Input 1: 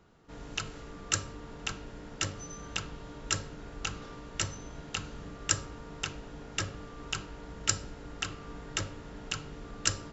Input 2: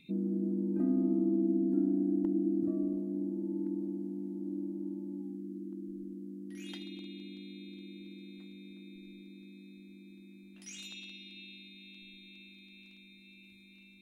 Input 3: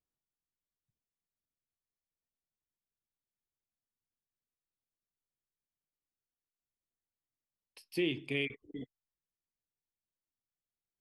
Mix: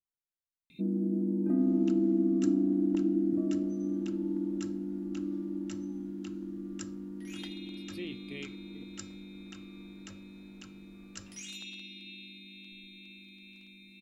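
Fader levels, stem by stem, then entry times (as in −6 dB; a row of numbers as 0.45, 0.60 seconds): −18.0, +2.5, −9.5 decibels; 1.30, 0.70, 0.00 seconds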